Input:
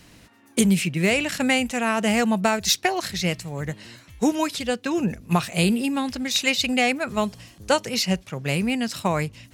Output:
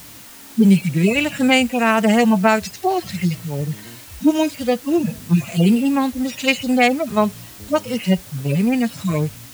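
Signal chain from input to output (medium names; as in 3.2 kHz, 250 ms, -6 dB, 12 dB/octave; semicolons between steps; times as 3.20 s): harmonic-percussive separation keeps harmonic; word length cut 8-bit, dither triangular; trim +7 dB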